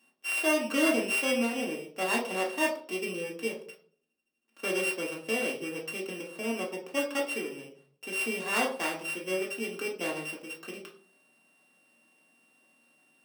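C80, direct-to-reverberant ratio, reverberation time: 13.0 dB, −3.0 dB, 0.50 s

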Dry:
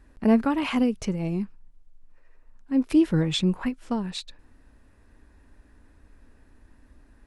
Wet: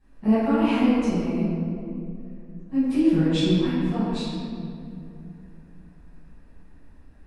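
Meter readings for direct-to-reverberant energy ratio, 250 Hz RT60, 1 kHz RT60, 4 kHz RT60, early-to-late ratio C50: −16.5 dB, 3.5 s, 2.3 s, 1.4 s, −4.0 dB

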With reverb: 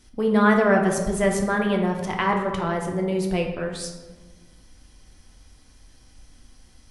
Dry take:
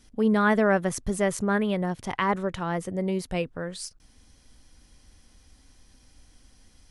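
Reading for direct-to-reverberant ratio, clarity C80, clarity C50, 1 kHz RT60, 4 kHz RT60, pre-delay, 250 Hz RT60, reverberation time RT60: 1.0 dB, 7.5 dB, 5.0 dB, 1.2 s, 0.75 s, 3 ms, 1.6 s, 1.3 s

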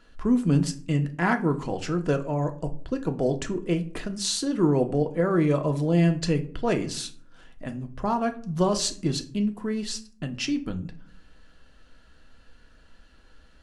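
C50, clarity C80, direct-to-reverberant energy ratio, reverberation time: 15.0 dB, 20.0 dB, 5.5 dB, 0.50 s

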